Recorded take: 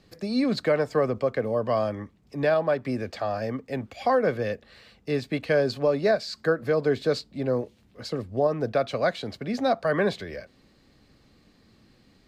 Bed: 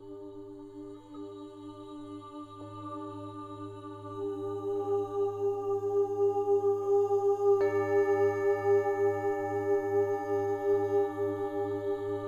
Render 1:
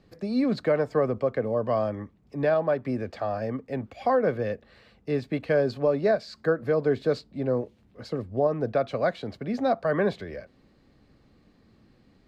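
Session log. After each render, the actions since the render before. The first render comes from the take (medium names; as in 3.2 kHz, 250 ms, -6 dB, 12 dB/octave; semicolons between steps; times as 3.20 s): treble shelf 2.5 kHz -10.5 dB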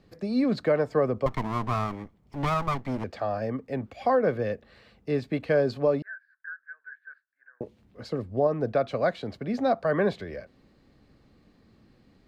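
1.26–3.04 s: comb filter that takes the minimum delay 0.94 ms; 6.02–7.61 s: Butterworth band-pass 1.6 kHz, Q 7.1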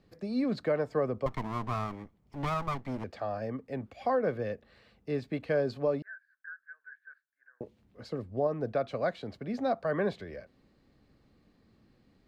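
trim -5.5 dB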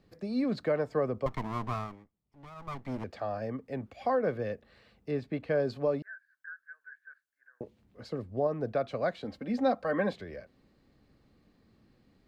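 1.69–2.93 s: dip -17.5 dB, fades 0.38 s; 5.11–5.60 s: treble shelf 3.8 kHz -7 dB; 9.24–10.13 s: comb 3.8 ms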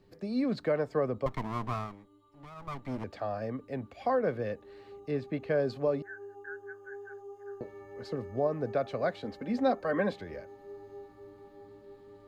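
add bed -19 dB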